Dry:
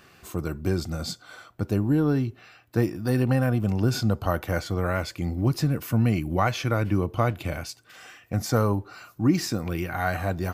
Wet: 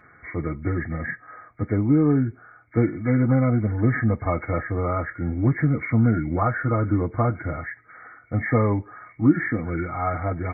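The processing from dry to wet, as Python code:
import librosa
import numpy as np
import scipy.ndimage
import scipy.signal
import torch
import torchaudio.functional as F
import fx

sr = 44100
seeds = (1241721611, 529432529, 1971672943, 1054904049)

y = fx.freq_compress(x, sr, knee_hz=1200.0, ratio=4.0)
y = fx.notch_comb(y, sr, f0_hz=190.0)
y = fx.dynamic_eq(y, sr, hz=240.0, q=0.77, threshold_db=-34.0, ratio=4.0, max_db=4)
y = F.gain(torch.from_numpy(y), 1.0).numpy()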